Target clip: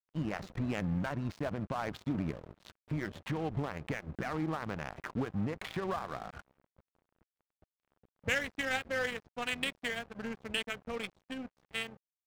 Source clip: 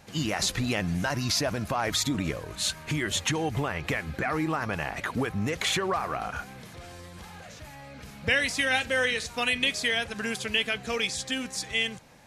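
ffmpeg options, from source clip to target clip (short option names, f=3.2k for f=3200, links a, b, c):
-af "adynamicequalizer=threshold=0.00794:dfrequency=190:dqfactor=1.5:tfrequency=190:tqfactor=1.5:attack=5:release=100:ratio=0.375:range=2:mode=boostabove:tftype=bell,adynamicsmooth=sensitivity=1.5:basefreq=630,aeval=exprs='sgn(val(0))*max(abs(val(0))-0.01,0)':c=same,volume=-5.5dB"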